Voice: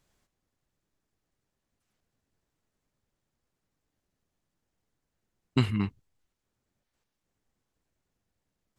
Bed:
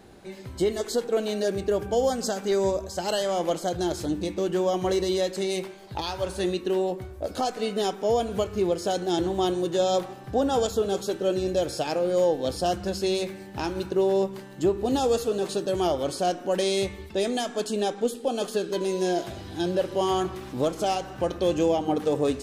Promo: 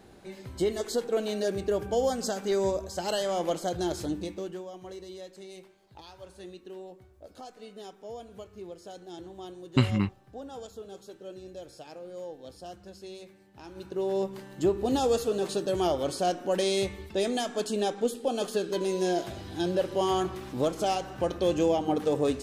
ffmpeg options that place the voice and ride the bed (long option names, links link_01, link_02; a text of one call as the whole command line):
ffmpeg -i stem1.wav -i stem2.wav -filter_complex "[0:a]adelay=4200,volume=2dB[link_01];[1:a]volume=13dB,afade=type=out:start_time=4.02:duration=0.64:silence=0.177828,afade=type=in:start_time=13.64:duration=0.87:silence=0.158489[link_02];[link_01][link_02]amix=inputs=2:normalize=0" out.wav